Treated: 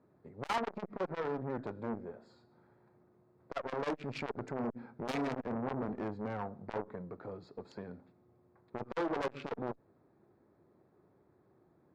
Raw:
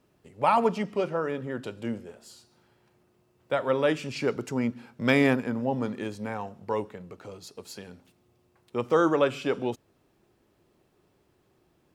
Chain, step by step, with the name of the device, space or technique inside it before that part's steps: local Wiener filter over 15 samples; valve radio (band-pass 91–4300 Hz; valve stage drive 28 dB, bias 0.4; transformer saturation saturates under 650 Hz); trim +1.5 dB

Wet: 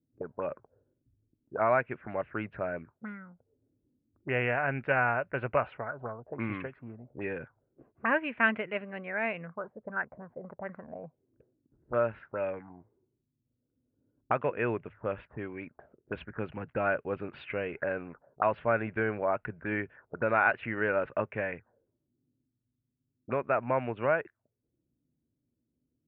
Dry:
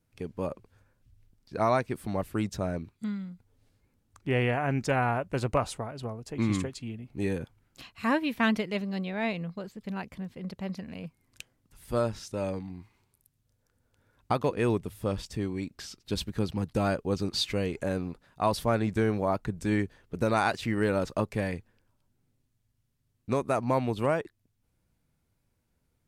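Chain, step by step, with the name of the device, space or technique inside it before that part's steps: envelope filter bass rig (touch-sensitive low-pass 280–2700 Hz up, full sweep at -28.5 dBFS; cabinet simulation 86–2100 Hz, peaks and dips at 92 Hz -8 dB, 190 Hz -8 dB, 290 Hz -4 dB, 600 Hz +5 dB, 1.5 kHz +8 dB); trim -4 dB

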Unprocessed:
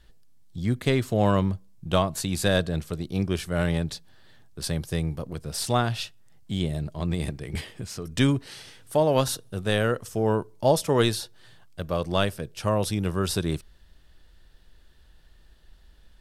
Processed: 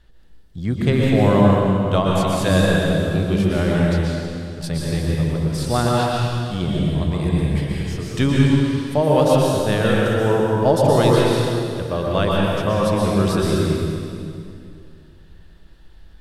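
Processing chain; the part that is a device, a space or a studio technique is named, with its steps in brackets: swimming-pool hall (reverberation RT60 2.4 s, pre-delay 113 ms, DRR -4.5 dB; treble shelf 3.8 kHz -8 dB); trim +2.5 dB

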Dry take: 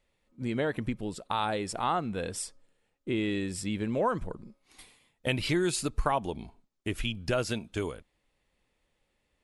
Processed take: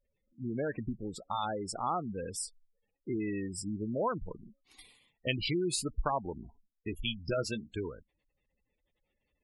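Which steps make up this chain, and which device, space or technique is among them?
spectral gate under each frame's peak -15 dB strong; presence and air boost (peaking EQ 3.5 kHz +5 dB 1.2 oct; treble shelf 9.3 kHz +5.5 dB); 6.44–7.72 s: doubling 14 ms -8.5 dB; trim -4 dB

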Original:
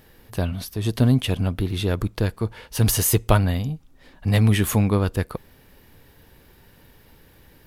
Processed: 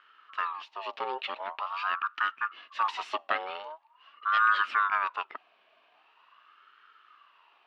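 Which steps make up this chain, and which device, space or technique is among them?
voice changer toy (ring modulator with a swept carrier 1 kHz, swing 35%, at 0.44 Hz; cabinet simulation 500–3900 Hz, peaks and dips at 520 Hz -9 dB, 800 Hz -8 dB, 1.2 kHz +5 dB, 1.7 kHz +4 dB, 2.8 kHz +10 dB); trim -7.5 dB

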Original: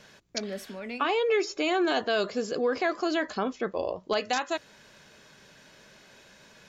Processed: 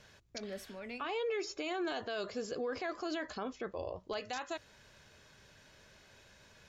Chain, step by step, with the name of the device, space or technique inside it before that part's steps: car stereo with a boomy subwoofer (resonant low shelf 130 Hz +8.5 dB, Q 1.5; peak limiter -23 dBFS, peak gain reduction 7.5 dB); trim -6.5 dB

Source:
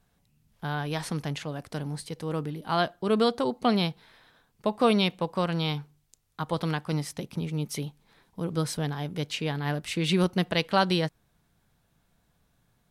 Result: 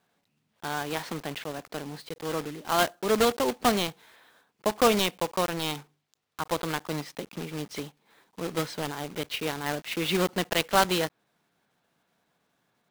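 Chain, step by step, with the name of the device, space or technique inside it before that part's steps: early digital voice recorder (band-pass 270–3900 Hz; block-companded coder 3-bit); trim +1.5 dB

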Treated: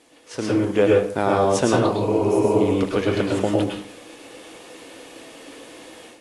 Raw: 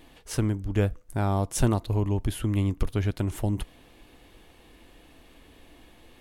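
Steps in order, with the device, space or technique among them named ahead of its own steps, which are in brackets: spectral replace 2.00–2.58 s, 260–5100 Hz before; filmed off a television (band-pass 260–6200 Hz; peaking EQ 500 Hz +7 dB 0.35 oct; reverberation RT60 0.50 s, pre-delay 98 ms, DRR -2 dB; white noise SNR 28 dB; level rider gain up to 12 dB; trim -2.5 dB; AAC 48 kbps 24 kHz)

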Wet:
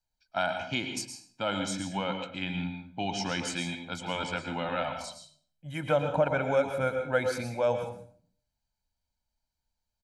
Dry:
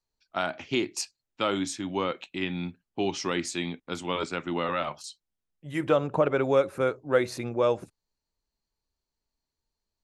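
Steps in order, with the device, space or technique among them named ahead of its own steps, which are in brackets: 0.99–1.47 s: peaking EQ 2.8 kHz -6.5 dB 2.3 oct; microphone above a desk (comb 1.3 ms, depth 78%; reverberation RT60 0.50 s, pre-delay 107 ms, DRR 5.5 dB); trim -3.5 dB

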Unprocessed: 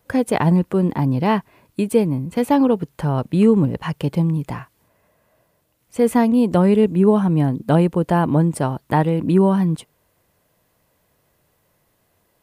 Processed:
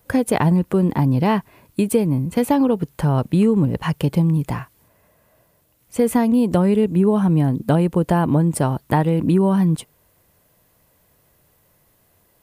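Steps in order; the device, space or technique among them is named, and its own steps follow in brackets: ASMR close-microphone chain (bass shelf 130 Hz +4.5 dB; compression 4:1, threshold -15 dBFS, peak gain reduction 6.5 dB; treble shelf 9.1 kHz +7.5 dB); trim +2 dB

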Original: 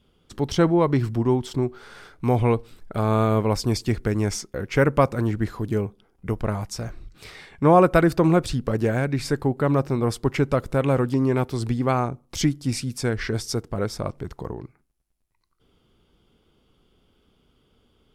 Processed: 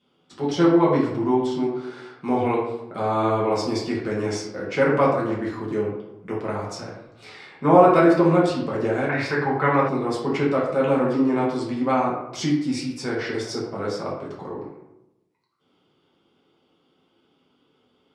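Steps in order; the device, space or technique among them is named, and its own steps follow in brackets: supermarket ceiling speaker (band-pass 240–6700 Hz; reverberation RT60 0.90 s, pre-delay 3 ms, DRR -6 dB); 9.09–9.89 s: graphic EQ 125/250/1000/2000/8000 Hz +4/-6/+6/+11/-7 dB; trim -5.5 dB

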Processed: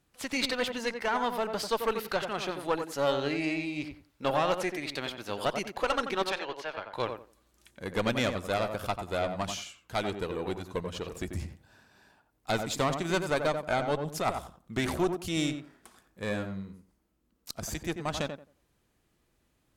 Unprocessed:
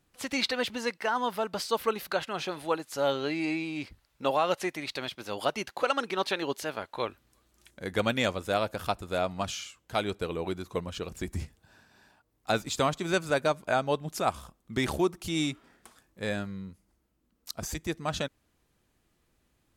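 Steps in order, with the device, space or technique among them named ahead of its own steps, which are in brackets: 6.30–6.93 s: three-band isolator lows -22 dB, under 440 Hz, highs -21 dB, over 4.8 kHz; rockabilly slapback (valve stage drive 21 dB, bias 0.6; tape echo 90 ms, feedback 24%, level -5 dB, low-pass 1.4 kHz); trim +2 dB

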